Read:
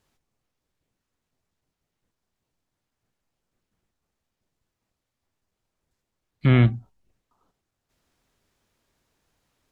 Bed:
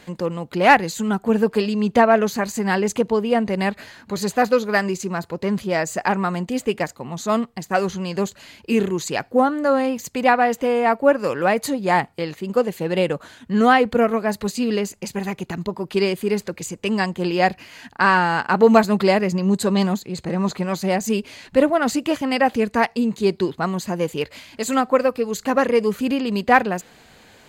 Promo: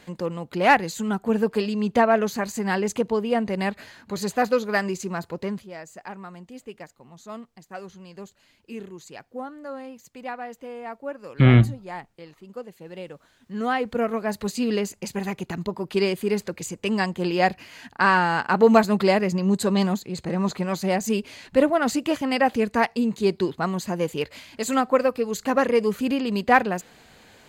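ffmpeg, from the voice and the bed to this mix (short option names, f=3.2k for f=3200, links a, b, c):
-filter_complex "[0:a]adelay=4950,volume=2.5dB[a];[1:a]volume=11dB,afade=t=out:st=5.39:d=0.28:silence=0.211349,afade=t=in:st=13.33:d=1.3:silence=0.177828[b];[a][b]amix=inputs=2:normalize=0"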